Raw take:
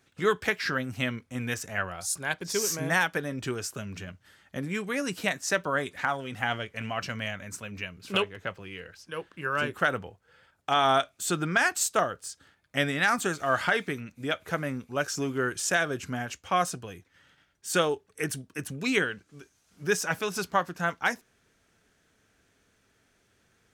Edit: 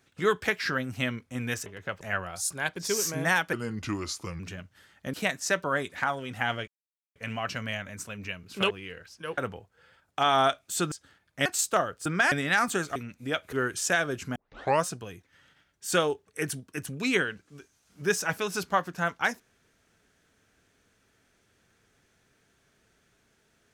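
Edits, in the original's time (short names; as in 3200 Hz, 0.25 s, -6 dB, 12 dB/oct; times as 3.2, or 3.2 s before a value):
3.18–3.89 speed 82%
4.63–5.15 cut
6.69 insert silence 0.48 s
8.24–8.59 move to 1.66
9.26–9.88 cut
11.42–11.68 swap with 12.28–12.82
13.46–13.93 cut
14.5–15.34 cut
16.17 tape start 0.48 s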